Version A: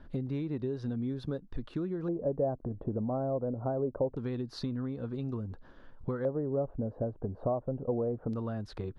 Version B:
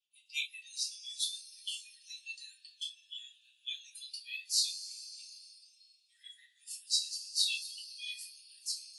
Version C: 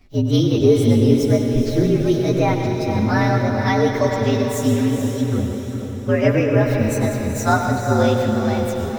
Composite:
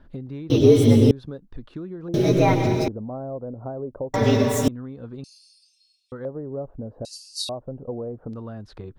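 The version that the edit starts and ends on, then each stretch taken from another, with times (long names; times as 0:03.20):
A
0:00.50–0:01.11: punch in from C
0:02.14–0:02.88: punch in from C
0:04.14–0:04.68: punch in from C
0:05.24–0:06.12: punch in from B
0:07.05–0:07.49: punch in from B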